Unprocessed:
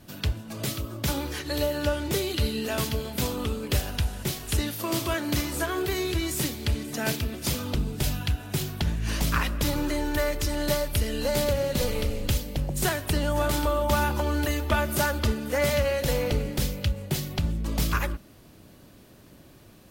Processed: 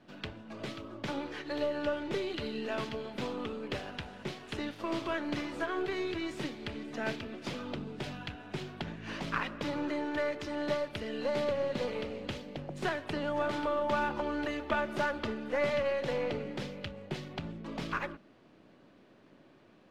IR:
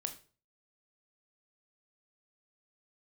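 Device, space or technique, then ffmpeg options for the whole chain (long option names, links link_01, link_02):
crystal radio: -af "highpass=210,lowpass=2800,aeval=exprs='if(lt(val(0),0),0.708*val(0),val(0))':channel_layout=same,volume=-3.5dB"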